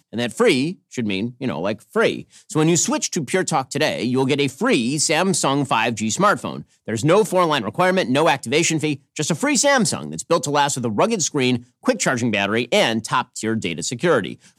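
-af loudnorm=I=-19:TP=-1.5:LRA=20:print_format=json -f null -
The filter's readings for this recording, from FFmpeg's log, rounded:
"input_i" : "-19.7",
"input_tp" : "-3.5",
"input_lra" : "2.2",
"input_thresh" : "-29.8",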